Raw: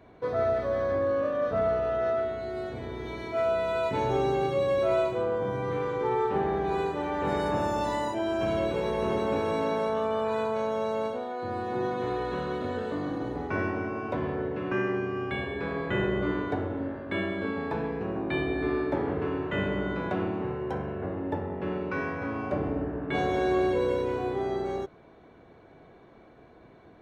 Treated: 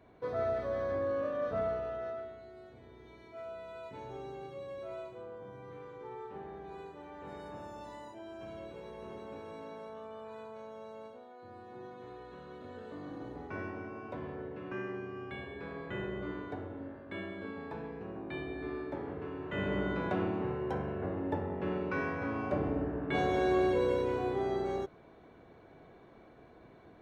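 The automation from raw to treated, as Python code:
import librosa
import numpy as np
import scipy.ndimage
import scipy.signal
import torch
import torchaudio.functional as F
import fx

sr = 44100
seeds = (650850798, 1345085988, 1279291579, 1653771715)

y = fx.gain(x, sr, db=fx.line((1.59, -6.5), (2.57, -18.0), (12.39, -18.0), (13.2, -11.0), (19.35, -11.0), (19.75, -3.0)))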